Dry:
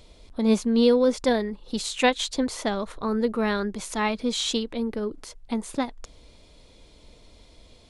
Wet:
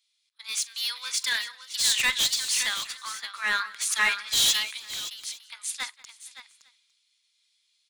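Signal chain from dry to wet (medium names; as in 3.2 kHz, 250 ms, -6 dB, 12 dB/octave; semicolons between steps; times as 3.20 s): Bessel high-pass 2.3 kHz, order 6; in parallel at -2 dB: peak limiter -25 dBFS, peak gain reduction 10.5 dB; on the sum: overload inside the chain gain 28 dB; multi-tap echo 45/192/469/567/856 ms -18/-18/-18/-6.5/-16.5 dB; three bands expanded up and down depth 100%; trim +5 dB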